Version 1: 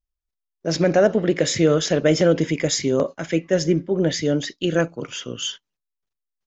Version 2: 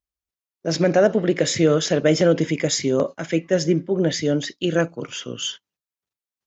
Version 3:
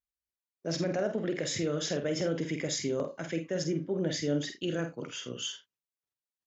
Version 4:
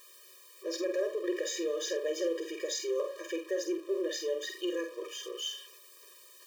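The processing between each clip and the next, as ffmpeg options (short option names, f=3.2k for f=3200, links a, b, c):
-af "highpass=70"
-filter_complex "[0:a]alimiter=limit=-13.5dB:level=0:latency=1:release=93,asplit=2[a][b];[b]aecho=0:1:48|80:0.422|0.15[c];[a][c]amix=inputs=2:normalize=0,volume=-9dB"
-af "aeval=exprs='val(0)+0.5*0.00841*sgn(val(0))':c=same,afftfilt=real='re*eq(mod(floor(b*sr/1024/320),2),1)':imag='im*eq(mod(floor(b*sr/1024/320),2),1)':win_size=1024:overlap=0.75"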